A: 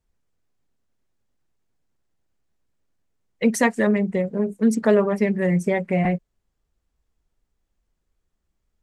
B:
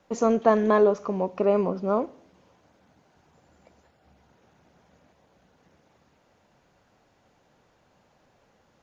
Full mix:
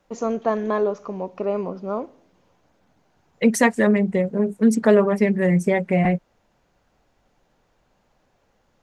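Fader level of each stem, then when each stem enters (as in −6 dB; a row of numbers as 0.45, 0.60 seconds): +2.0, −2.5 decibels; 0.00, 0.00 seconds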